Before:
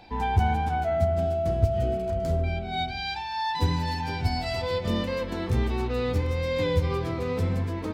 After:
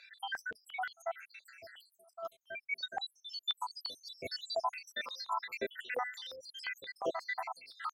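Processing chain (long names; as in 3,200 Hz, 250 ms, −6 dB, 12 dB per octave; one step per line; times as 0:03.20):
time-frequency cells dropped at random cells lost 82%
0:01.89–0:02.71: flat-topped bell 4,700 Hz −11.5 dB
high-pass on a step sequencer 5.7 Hz 580–4,100 Hz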